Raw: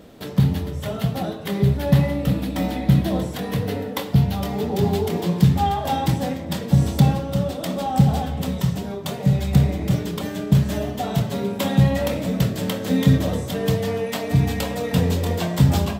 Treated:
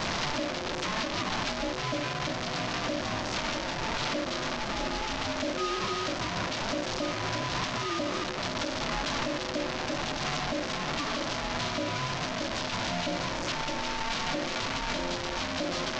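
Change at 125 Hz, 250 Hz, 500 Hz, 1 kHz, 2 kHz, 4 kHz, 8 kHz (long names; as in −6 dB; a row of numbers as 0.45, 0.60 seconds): −21.0, −13.5, −8.0, −4.0, +2.5, +1.5, −1.5 decibels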